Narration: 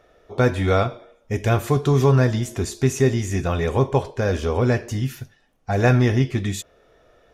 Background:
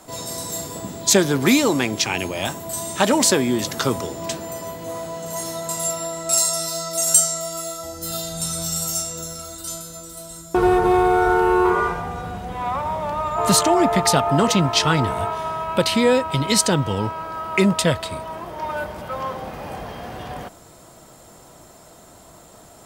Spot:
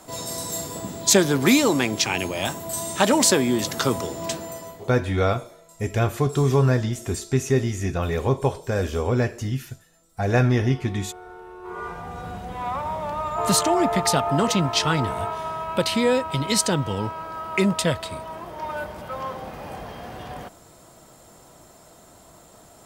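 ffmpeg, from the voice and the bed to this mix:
-filter_complex "[0:a]adelay=4500,volume=-2.5dB[a];[1:a]volume=20.5dB,afade=t=out:st=4.32:d=0.65:silence=0.0630957,afade=t=in:st=11.62:d=0.68:silence=0.0841395[b];[a][b]amix=inputs=2:normalize=0"

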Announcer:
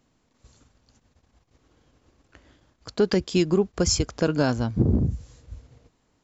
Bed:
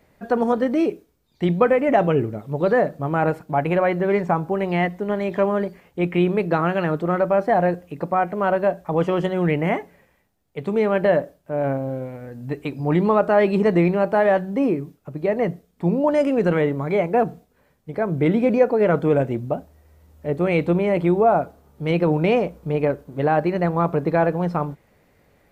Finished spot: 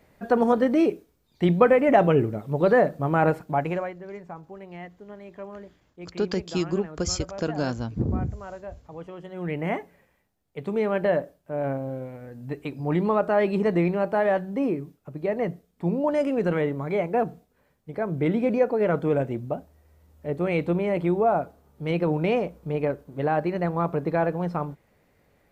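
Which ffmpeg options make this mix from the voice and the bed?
-filter_complex "[0:a]adelay=3200,volume=-5dB[a];[1:a]volume=13.5dB,afade=t=out:st=3.4:d=0.54:silence=0.11885,afade=t=in:st=9.25:d=0.5:silence=0.199526[b];[a][b]amix=inputs=2:normalize=0"

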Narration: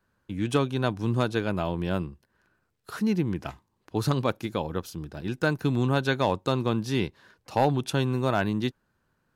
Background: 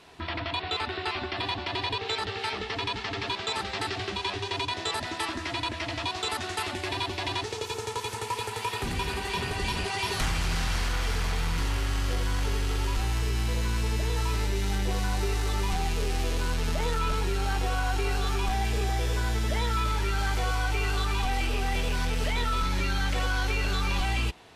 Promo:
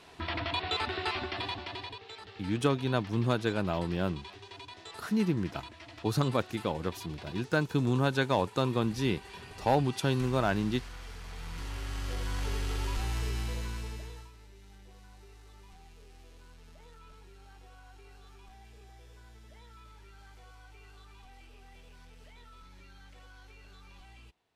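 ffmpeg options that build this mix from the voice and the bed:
-filter_complex "[0:a]adelay=2100,volume=-3dB[a];[1:a]volume=10dB,afade=t=out:st=1.08:d=0.94:silence=0.177828,afade=t=in:st=11.23:d=1.31:silence=0.266073,afade=t=out:st=13.26:d=1.05:silence=0.0841395[b];[a][b]amix=inputs=2:normalize=0"

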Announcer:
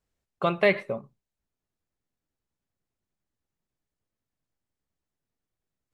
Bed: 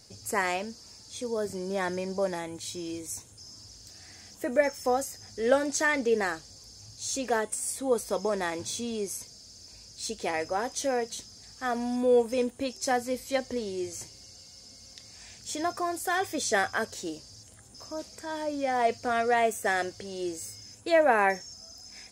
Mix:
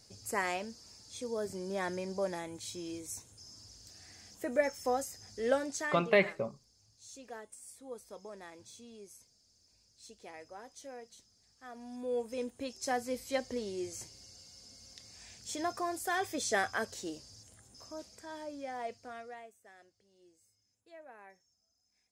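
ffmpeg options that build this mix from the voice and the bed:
-filter_complex "[0:a]adelay=5500,volume=-4.5dB[a];[1:a]volume=8.5dB,afade=t=out:st=5.44:d=0.7:silence=0.211349,afade=t=in:st=11.73:d=1.47:silence=0.199526,afade=t=out:st=17.28:d=2.24:silence=0.0501187[b];[a][b]amix=inputs=2:normalize=0"

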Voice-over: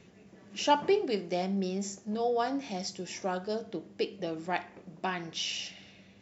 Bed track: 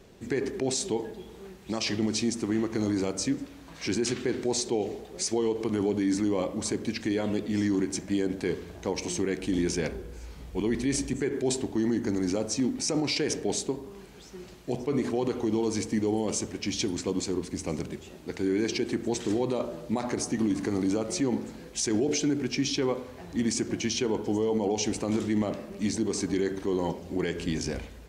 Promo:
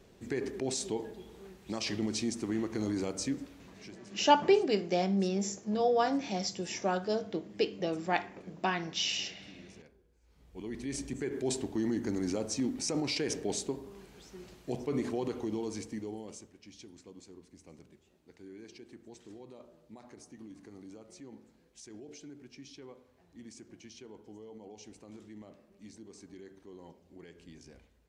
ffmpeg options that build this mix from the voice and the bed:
-filter_complex "[0:a]adelay=3600,volume=2dB[a];[1:a]volume=17.5dB,afade=t=out:st=3.5:d=0.45:silence=0.0749894,afade=t=in:st=10.22:d=1.29:silence=0.0707946,afade=t=out:st=15.01:d=1.5:silence=0.133352[b];[a][b]amix=inputs=2:normalize=0"

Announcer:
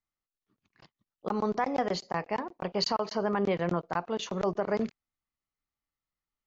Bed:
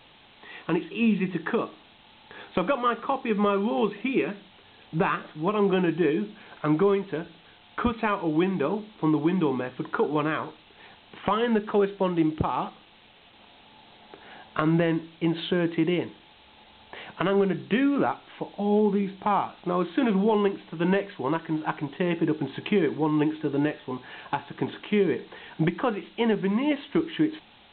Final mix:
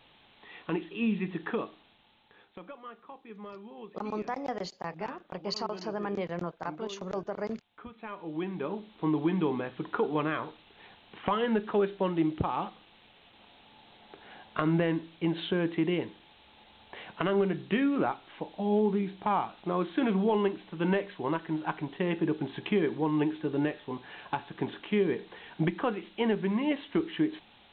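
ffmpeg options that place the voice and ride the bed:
-filter_complex "[0:a]adelay=2700,volume=-5.5dB[a];[1:a]volume=11dB,afade=t=out:st=1.59:d=0.97:silence=0.177828,afade=t=in:st=7.9:d=1.36:silence=0.141254[b];[a][b]amix=inputs=2:normalize=0"

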